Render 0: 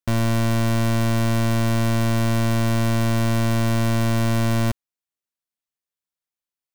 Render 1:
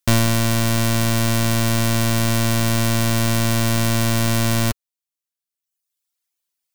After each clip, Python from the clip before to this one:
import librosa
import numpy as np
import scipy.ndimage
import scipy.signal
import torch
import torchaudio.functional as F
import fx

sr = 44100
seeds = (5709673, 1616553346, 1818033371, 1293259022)

y = fx.high_shelf(x, sr, hz=2500.0, db=10.0)
y = fx.dereverb_blind(y, sr, rt60_s=1.1)
y = F.gain(torch.from_numpy(y), 5.0).numpy()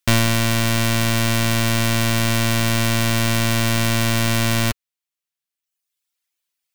y = fx.peak_eq(x, sr, hz=2400.0, db=5.5, octaves=1.7)
y = F.gain(torch.from_numpy(y), -1.0).numpy()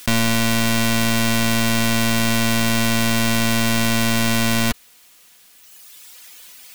y = x + 0.43 * np.pad(x, (int(4.1 * sr / 1000.0), 0))[:len(x)]
y = fx.env_flatten(y, sr, amount_pct=70)
y = F.gain(torch.from_numpy(y), -3.0).numpy()